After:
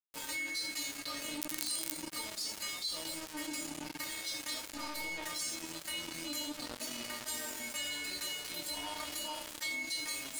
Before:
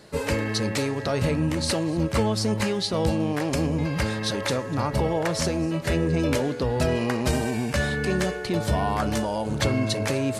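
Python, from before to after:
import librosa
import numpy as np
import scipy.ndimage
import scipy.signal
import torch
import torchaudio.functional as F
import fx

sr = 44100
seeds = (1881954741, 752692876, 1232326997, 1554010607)

y = fx.octave_divider(x, sr, octaves=2, level_db=0.0, at=(4.7, 5.27))
y = fx.low_shelf_res(y, sr, hz=170.0, db=-9.0, q=3.0, at=(6.54, 7.02))
y = fx.stiff_resonator(y, sr, f0_hz=300.0, decay_s=0.35, stiffness=0.002)
y = fx.echo_wet_highpass(y, sr, ms=82, feedback_pct=34, hz=3300.0, wet_db=-13.0)
y = fx.room_shoebox(y, sr, seeds[0], volume_m3=250.0, walls='furnished', distance_m=1.8)
y = fx.dmg_crackle(y, sr, seeds[1], per_s=39.0, level_db=-26.0, at=(1.37, 1.91), fade=0.02)
y = fx.tilt_eq(y, sr, slope=4.0)
y = np.sign(y) * np.maximum(np.abs(y) - 10.0 ** (-42.5 / 20.0), 0.0)
y = fx.env_flatten(y, sr, amount_pct=70)
y = y * librosa.db_to_amplitude(-7.5)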